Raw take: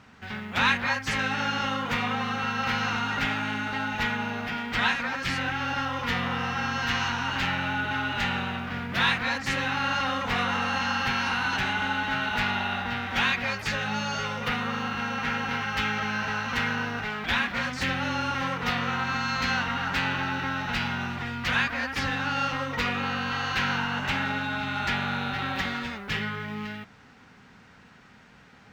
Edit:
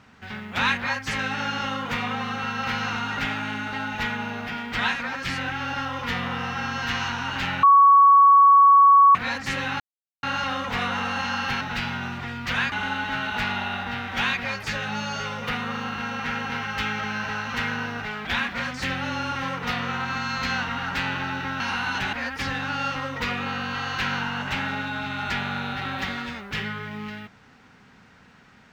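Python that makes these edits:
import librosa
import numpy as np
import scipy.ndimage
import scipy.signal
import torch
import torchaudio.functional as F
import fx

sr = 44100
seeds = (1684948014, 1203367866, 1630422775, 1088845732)

y = fx.edit(x, sr, fx.bleep(start_s=7.63, length_s=1.52, hz=1120.0, db=-10.0),
    fx.insert_silence(at_s=9.8, length_s=0.43),
    fx.swap(start_s=11.18, length_s=0.53, other_s=20.59, other_length_s=1.11), tone=tone)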